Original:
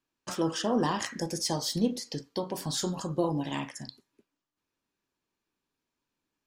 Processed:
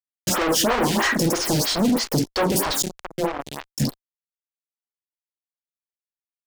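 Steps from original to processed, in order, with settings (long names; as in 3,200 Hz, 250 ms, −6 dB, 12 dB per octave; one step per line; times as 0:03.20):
0:02.82–0:03.78: power curve on the samples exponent 3
hum removal 57.03 Hz, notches 7
fuzz pedal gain 49 dB, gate −50 dBFS
phaser with staggered stages 3.1 Hz
level −2.5 dB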